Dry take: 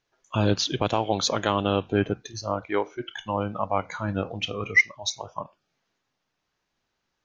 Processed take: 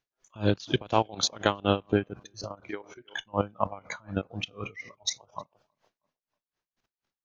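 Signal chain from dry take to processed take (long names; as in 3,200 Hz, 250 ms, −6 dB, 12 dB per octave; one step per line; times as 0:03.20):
output level in coarse steps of 13 dB
on a send: tape delay 318 ms, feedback 23%, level −21 dB, low-pass 1,700 Hz
on the sum: tremolo with a sine in dB 4.1 Hz, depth 24 dB
level +6 dB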